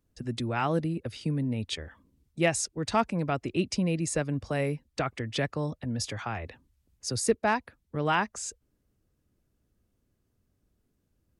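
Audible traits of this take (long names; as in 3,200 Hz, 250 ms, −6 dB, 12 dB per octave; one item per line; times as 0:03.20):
background noise floor −76 dBFS
spectral slope −4.5 dB per octave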